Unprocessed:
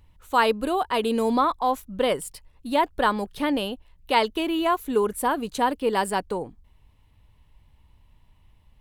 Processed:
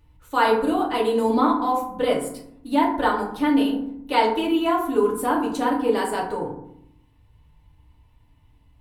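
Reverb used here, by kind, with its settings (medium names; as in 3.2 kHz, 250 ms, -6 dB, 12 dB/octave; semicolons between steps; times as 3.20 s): FDN reverb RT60 0.71 s, low-frequency decay 1.55×, high-frequency decay 0.45×, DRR -3.5 dB; trim -4.5 dB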